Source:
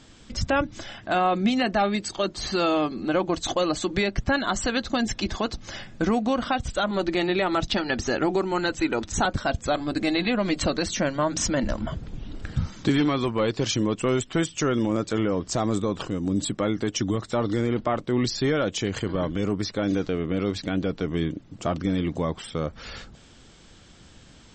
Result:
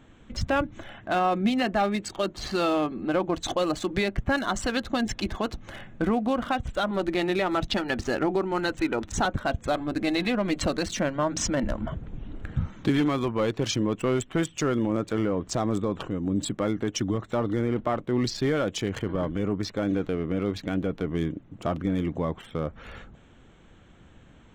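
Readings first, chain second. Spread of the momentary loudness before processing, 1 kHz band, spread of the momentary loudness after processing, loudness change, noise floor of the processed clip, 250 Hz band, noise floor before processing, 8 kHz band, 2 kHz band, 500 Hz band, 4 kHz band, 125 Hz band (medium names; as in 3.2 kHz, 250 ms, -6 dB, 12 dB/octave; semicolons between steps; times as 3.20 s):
7 LU, -2.0 dB, 8 LU, -2.0 dB, -53 dBFS, -1.5 dB, -51 dBFS, -3.5 dB, -2.5 dB, -1.5 dB, -3.5 dB, -1.5 dB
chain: local Wiener filter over 9 samples; trim -1.5 dB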